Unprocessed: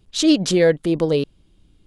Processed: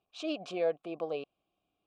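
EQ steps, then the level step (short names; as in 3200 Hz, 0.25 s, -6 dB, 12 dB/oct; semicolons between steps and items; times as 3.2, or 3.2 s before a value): vowel filter a; -1.0 dB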